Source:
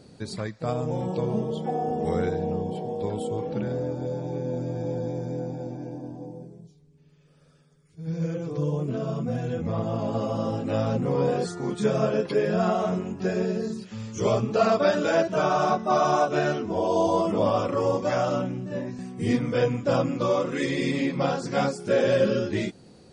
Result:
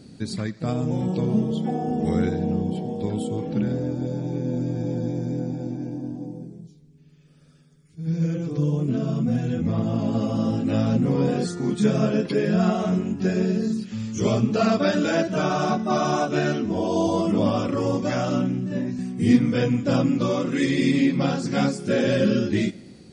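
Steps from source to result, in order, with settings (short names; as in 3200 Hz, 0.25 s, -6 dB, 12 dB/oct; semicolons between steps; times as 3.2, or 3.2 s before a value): graphic EQ 250/500/1000 Hz +6/-6/-6 dB; on a send: analogue delay 86 ms, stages 4096, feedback 64%, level -23 dB; on the sum: gain +3.5 dB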